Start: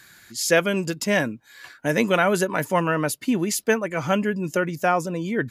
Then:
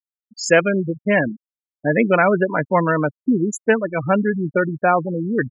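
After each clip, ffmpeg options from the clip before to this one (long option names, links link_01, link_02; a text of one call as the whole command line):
ffmpeg -i in.wav -af "afwtdn=0.0251,afftfilt=real='re*gte(hypot(re,im),0.1)':imag='im*gte(hypot(re,im),0.1)':win_size=1024:overlap=0.75,volume=4.5dB" out.wav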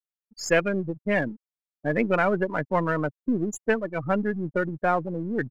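ffmpeg -i in.wav -af "aeval=exprs='if(lt(val(0),0),0.708*val(0),val(0))':channel_layout=same,volume=-6dB" out.wav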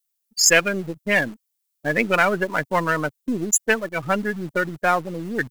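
ffmpeg -i in.wav -filter_complex "[0:a]crystalizer=i=9.5:c=0,asplit=2[link_01][link_02];[link_02]acrusher=bits=5:mix=0:aa=0.000001,volume=-6dB[link_03];[link_01][link_03]amix=inputs=2:normalize=0,volume=-4dB" out.wav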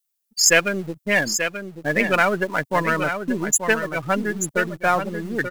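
ffmpeg -i in.wav -af "aecho=1:1:884:0.398" out.wav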